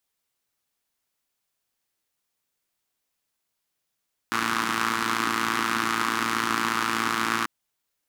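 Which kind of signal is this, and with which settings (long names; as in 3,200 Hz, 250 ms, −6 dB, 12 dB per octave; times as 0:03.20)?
pulse-train model of a four-cylinder engine, steady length 3.14 s, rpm 3,400, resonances 280/1,200 Hz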